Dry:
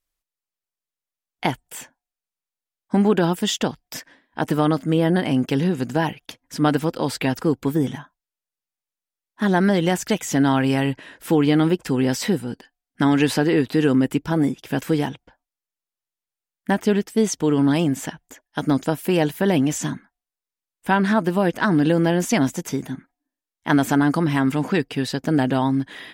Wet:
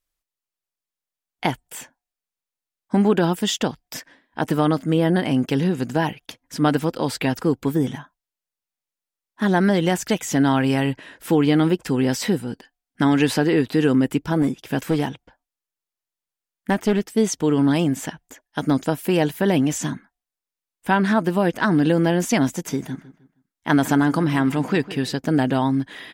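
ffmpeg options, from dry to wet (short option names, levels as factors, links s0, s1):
-filter_complex "[0:a]asettb=1/sr,asplit=3[s0][s1][s2];[s0]atrim=end=14.424[s3];[s1]atrim=start=14.42:end=17.06,asetpts=PTS-STARTPTS,afade=t=in:d=0.004:c=qsin,afade=t=out:st=2.636:d=0.004:c=qsin,aeval=exprs='clip(val(0),-1,0.15)':c=same[s4];[s2]atrim=start=17.056[s5];[s3][s4]acrossfade=d=0.004:c1=hsin:c2=qsin[s6];[s6][s5]acrossfade=d=0.004:c1=qsin:c2=hsin,asplit=3[s7][s8][s9];[s7]afade=t=out:st=22.67:d=0.02[s10];[s8]asplit=2[s11][s12];[s12]adelay=156,lowpass=f=4200:p=1,volume=0.15,asplit=2[s13][s14];[s14]adelay=156,lowpass=f=4200:p=1,volume=0.34,asplit=2[s15][s16];[s16]adelay=156,lowpass=f=4200:p=1,volume=0.34[s17];[s11][s13][s15][s17]amix=inputs=4:normalize=0,afade=t=in:st=22.67:d=0.02,afade=t=out:st=25.13:d=0.02[s18];[s9]afade=t=in:st=25.13:d=0.02[s19];[s10][s18][s19]amix=inputs=3:normalize=0"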